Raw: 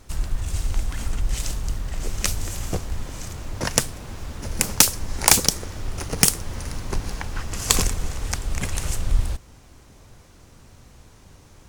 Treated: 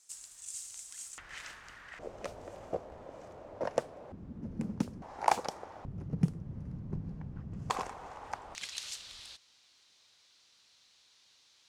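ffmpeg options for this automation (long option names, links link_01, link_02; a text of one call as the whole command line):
ffmpeg -i in.wav -af "asetnsamples=nb_out_samples=441:pad=0,asendcmd='1.18 bandpass f 1700;1.99 bandpass f 590;4.12 bandpass f 210;5.02 bandpass f 790;5.85 bandpass f 160;7.7 bandpass f 860;8.55 bandpass f 4000',bandpass=frequency=7700:width_type=q:width=2.6:csg=0" out.wav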